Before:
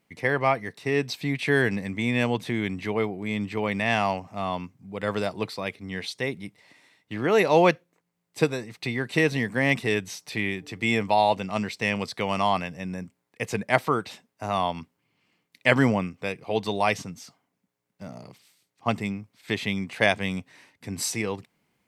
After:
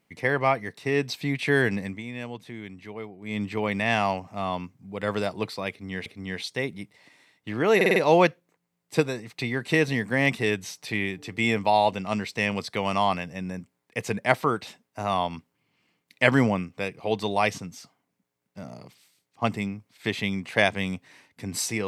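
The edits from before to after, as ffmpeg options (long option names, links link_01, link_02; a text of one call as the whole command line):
ffmpeg -i in.wav -filter_complex "[0:a]asplit=8[link_01][link_02][link_03][link_04][link_05][link_06][link_07][link_08];[link_01]atrim=end=2.03,asetpts=PTS-STARTPTS,afade=type=out:start_time=1.85:duration=0.18:silence=0.266073[link_09];[link_02]atrim=start=2.03:end=3.21,asetpts=PTS-STARTPTS,volume=-11.5dB[link_10];[link_03]atrim=start=3.21:end=6.062,asetpts=PTS-STARTPTS,afade=type=in:duration=0.18:silence=0.266073[link_11];[link_04]atrim=start=5.698:end=7.452[link_12];[link_05]atrim=start=7.398:end=7.452[link_13];[link_06]atrim=start=7.398:end=7.452[link_14];[link_07]atrim=start=7.398:end=7.452[link_15];[link_08]atrim=start=7.398[link_16];[link_09][link_10][link_11]concat=n=3:v=0:a=1[link_17];[link_17][link_12]acrossfade=duration=0.004:curve1=hsin:curve2=hsin[link_18];[link_18][link_13]acrossfade=duration=0.004:curve1=hsin:curve2=hsin[link_19];[link_19][link_14]acrossfade=duration=0.004:curve1=hsin:curve2=hsin[link_20];[link_20][link_15]acrossfade=duration=0.004:curve1=hsin:curve2=hsin[link_21];[link_21][link_16]acrossfade=duration=0.004:curve1=hsin:curve2=hsin" out.wav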